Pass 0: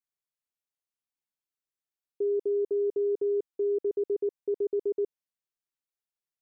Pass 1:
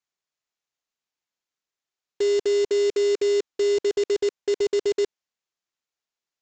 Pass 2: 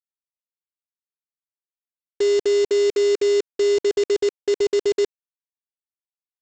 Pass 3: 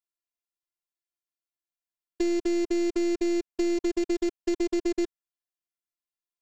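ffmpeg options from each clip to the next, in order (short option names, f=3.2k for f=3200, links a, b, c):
-af "lowshelf=f=180:g=-8.5,acontrast=73,aresample=16000,acrusher=bits=2:mode=log:mix=0:aa=0.000001,aresample=44100"
-af "aeval=exprs='sgn(val(0))*max(abs(val(0))-0.00141,0)':c=same,volume=3dB"
-filter_complex "[0:a]aeval=exprs='0.211*(cos(1*acos(clip(val(0)/0.211,-1,1)))-cos(1*PI/2))+0.0376*(cos(2*acos(clip(val(0)/0.211,-1,1)))-cos(2*PI/2))+0.00376*(cos(5*acos(clip(val(0)/0.211,-1,1)))-cos(5*PI/2))+0.00668*(cos(6*acos(clip(val(0)/0.211,-1,1)))-cos(6*PI/2))+0.00531*(cos(8*acos(clip(val(0)/0.211,-1,1)))-cos(8*PI/2))':c=same,afftfilt=real='hypot(re,im)*cos(PI*b)':imag='0':win_size=512:overlap=0.75,acrossover=split=2600|5800[a][b][c];[a]acompressor=threshold=-23dB:ratio=4[d];[b]acompressor=threshold=-46dB:ratio=4[e];[c]acompressor=threshold=-48dB:ratio=4[f];[d][e][f]amix=inputs=3:normalize=0"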